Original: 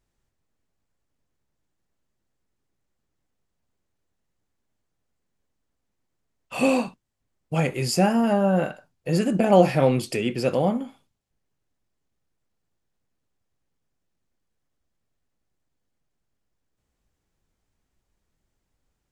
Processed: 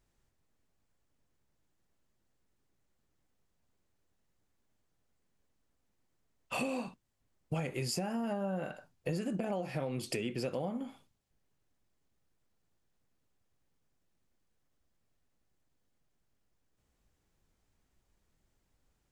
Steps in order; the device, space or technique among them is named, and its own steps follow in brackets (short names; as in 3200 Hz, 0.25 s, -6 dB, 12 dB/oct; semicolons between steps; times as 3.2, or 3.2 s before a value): serial compression, leveller first (compressor 2.5:1, threshold -21 dBFS, peak gain reduction 8.5 dB; compressor 6:1, threshold -33 dBFS, peak gain reduction 15.5 dB)